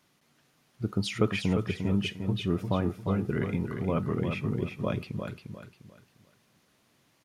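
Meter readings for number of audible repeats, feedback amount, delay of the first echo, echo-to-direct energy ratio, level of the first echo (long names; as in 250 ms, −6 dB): 3, 32%, 351 ms, −6.0 dB, −6.5 dB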